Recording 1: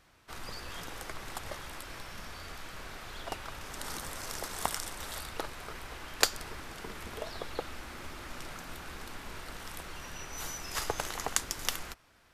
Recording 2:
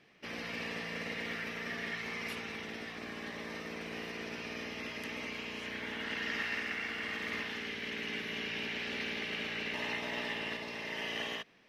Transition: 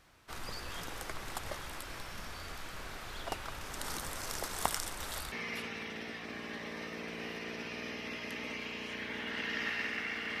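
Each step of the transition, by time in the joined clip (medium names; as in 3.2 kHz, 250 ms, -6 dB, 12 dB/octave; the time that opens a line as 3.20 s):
recording 1
5.32 s: go over to recording 2 from 2.05 s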